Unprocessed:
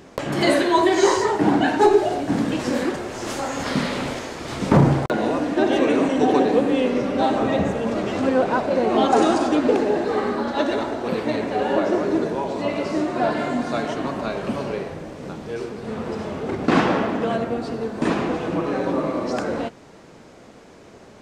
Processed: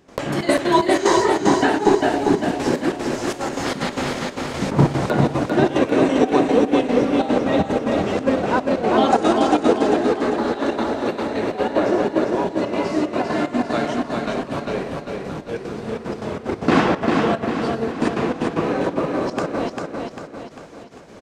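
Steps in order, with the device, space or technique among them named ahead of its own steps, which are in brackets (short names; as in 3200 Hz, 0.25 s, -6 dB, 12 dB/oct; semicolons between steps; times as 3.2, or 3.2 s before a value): trance gate with a delay (step gate ".xxxx.x.xx.x" 185 bpm -12 dB; feedback echo 0.397 s, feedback 48%, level -4 dB); gain +1.5 dB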